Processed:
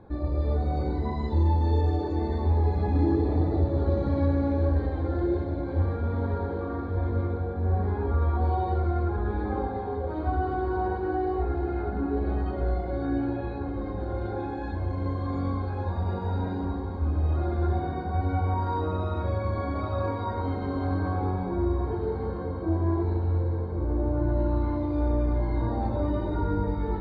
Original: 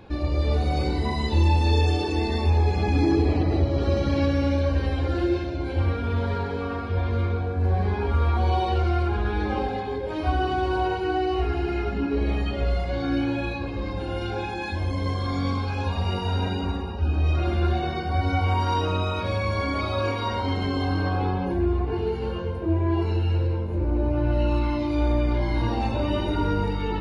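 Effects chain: running mean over 16 samples; diffused feedback echo 1.637 s, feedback 45%, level -10 dB; gain -3 dB

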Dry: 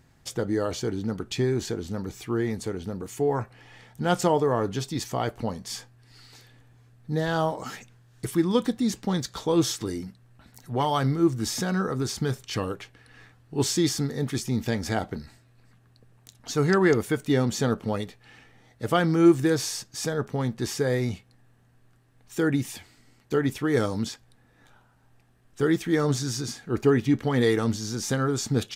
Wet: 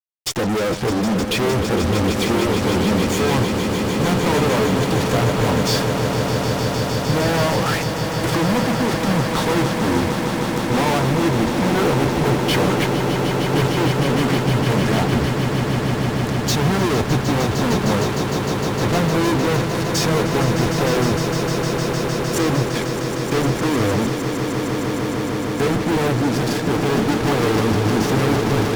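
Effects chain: gate -45 dBFS, range -8 dB; flange 0.58 Hz, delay 0.3 ms, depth 6.9 ms, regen -23%; treble ducked by the level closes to 960 Hz, closed at -28.5 dBFS; fuzz box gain 49 dB, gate -51 dBFS; swelling echo 0.153 s, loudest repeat 8, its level -10 dB; gain -5.5 dB

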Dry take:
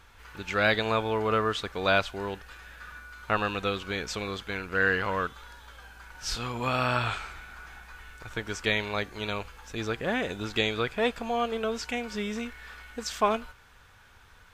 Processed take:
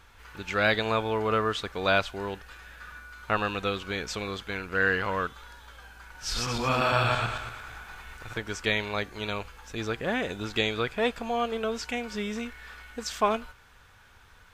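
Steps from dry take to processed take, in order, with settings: 6.24–8.38 regenerating reverse delay 0.114 s, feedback 49%, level -0.5 dB

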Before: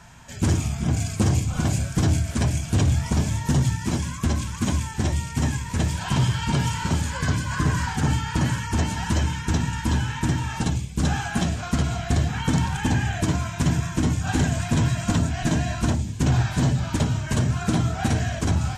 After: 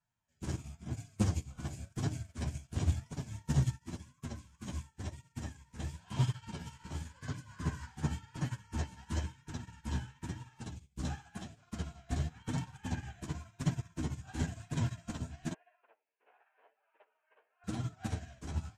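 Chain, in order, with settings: 15.53–17.64 Chebyshev band-pass 440–2700 Hz, order 4; flange 0.95 Hz, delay 6.5 ms, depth 9.8 ms, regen -1%; upward expander 2.5:1, over -39 dBFS; gain -5.5 dB

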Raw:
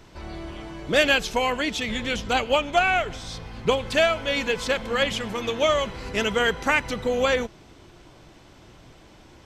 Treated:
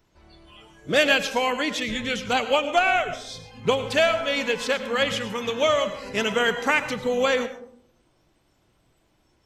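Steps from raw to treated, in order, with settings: spectral noise reduction 16 dB; digital reverb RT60 0.65 s, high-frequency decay 0.35×, pre-delay 65 ms, DRR 11 dB

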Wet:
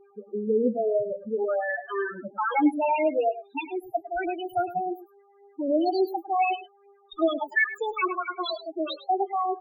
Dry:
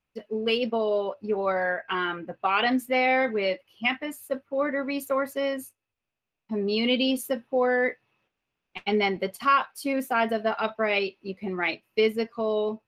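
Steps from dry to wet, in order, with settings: speed glide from 92% -> 176%; buzz 400 Hz, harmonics 19, -56 dBFS -5 dB/oct; phaser 0.87 Hz, delay 4.8 ms, feedback 41%; in parallel at -10 dB: decimation with a swept rate 40×, swing 100% 0.3 Hz; on the sum: loudest bins only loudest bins 4; on a send: echo 0.104 s -14.5 dB

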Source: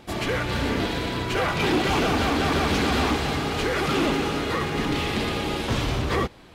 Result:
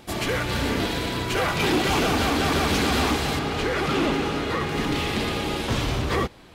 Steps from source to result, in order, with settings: high shelf 6200 Hz +8 dB, from 3.39 s -4 dB, from 4.69 s +3 dB

